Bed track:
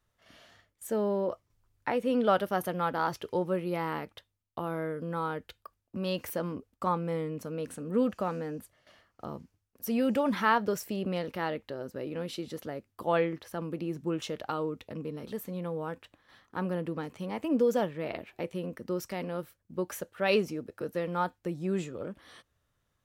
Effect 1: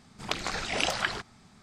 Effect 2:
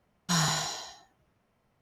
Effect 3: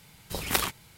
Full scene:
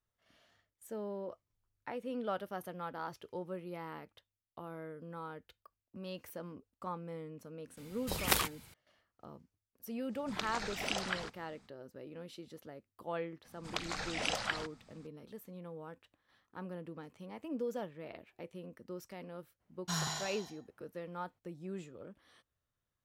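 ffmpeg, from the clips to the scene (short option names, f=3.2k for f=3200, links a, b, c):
-filter_complex "[1:a]asplit=2[a][b];[0:a]volume=-12dB[c];[b]bandreject=f=400:w=7.2[d];[3:a]atrim=end=0.97,asetpts=PTS-STARTPTS,volume=-3.5dB,afade=t=in:d=0.004:c=hsin,afade=t=out:st=0.966:d=0.004:c=hsin,adelay=7770[e];[a]atrim=end=1.62,asetpts=PTS-STARTPTS,volume=-8.5dB,afade=t=in:d=0.05,afade=t=out:st=1.57:d=0.05,adelay=10080[f];[d]atrim=end=1.62,asetpts=PTS-STARTPTS,volume=-7dB,afade=t=in:d=0.004:c=hsin,afade=t=out:st=1.616:d=0.004:c=hsin,adelay=13450[g];[2:a]atrim=end=1.81,asetpts=PTS-STARTPTS,volume=-9.5dB,afade=t=in:d=0.02,afade=t=out:st=1.79:d=0.02,adelay=19590[h];[c][e][f][g][h]amix=inputs=5:normalize=0"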